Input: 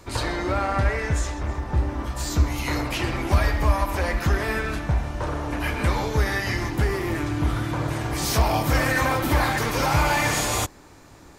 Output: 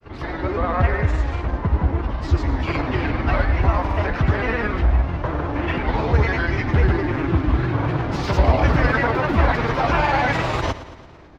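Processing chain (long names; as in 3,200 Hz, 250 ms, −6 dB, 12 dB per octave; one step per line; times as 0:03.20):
automatic gain control gain up to 6 dB
granular cloud, pitch spread up and down by 3 semitones
high-frequency loss of the air 260 metres
on a send: repeating echo 113 ms, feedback 57%, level −15 dB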